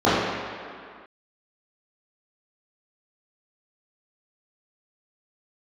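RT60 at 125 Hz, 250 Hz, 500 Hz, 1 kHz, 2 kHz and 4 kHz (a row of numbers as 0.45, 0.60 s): 1.5 s, 2.0 s, 2.0 s, 2.3 s, n/a, 1.7 s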